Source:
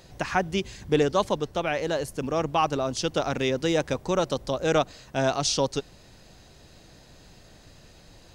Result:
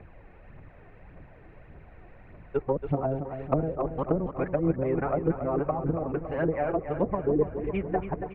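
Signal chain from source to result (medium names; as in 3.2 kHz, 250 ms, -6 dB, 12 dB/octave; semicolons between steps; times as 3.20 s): reverse the whole clip; elliptic low-pass 2.3 kHz, stop band 70 dB; phaser 1.7 Hz, delay 2.9 ms, feedback 52%; low-pass that closes with the level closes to 360 Hz, closed at -20 dBFS; feedback delay 280 ms, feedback 59%, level -9 dB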